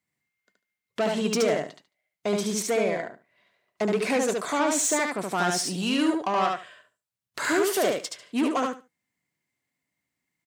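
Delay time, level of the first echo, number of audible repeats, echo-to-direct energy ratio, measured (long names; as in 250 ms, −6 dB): 73 ms, −3.0 dB, 3, −3.0 dB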